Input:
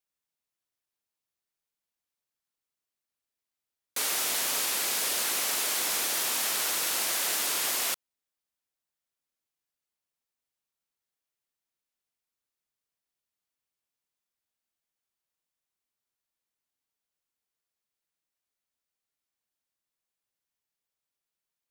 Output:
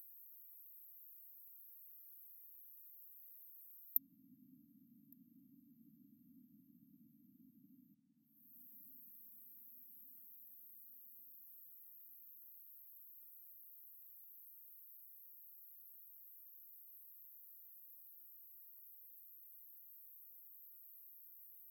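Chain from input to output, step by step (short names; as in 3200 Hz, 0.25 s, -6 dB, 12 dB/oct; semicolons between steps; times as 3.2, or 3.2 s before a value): treble ducked by the level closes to 420 Hz, closed at -28.5 dBFS; in parallel at -2.5 dB: upward compressor, threshold -53 dBFS; on the sum: brick-wall FIR band-stop 290–12000 Hz; differentiator; on a send: darkening echo 1.162 s, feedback 51%, level -10 dB; on the sum: gain +14.5 dB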